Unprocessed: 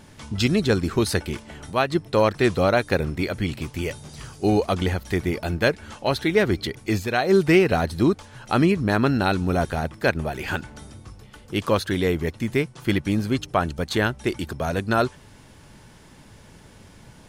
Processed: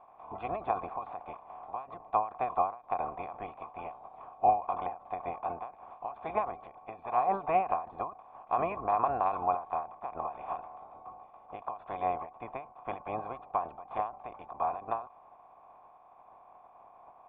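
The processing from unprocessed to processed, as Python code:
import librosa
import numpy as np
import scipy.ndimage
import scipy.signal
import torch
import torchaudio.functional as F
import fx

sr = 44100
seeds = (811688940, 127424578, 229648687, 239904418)

y = fx.spec_clip(x, sr, under_db=21)
y = fx.formant_cascade(y, sr, vowel='a')
y = fx.end_taper(y, sr, db_per_s=150.0)
y = F.gain(torch.from_numpy(y), 7.5).numpy()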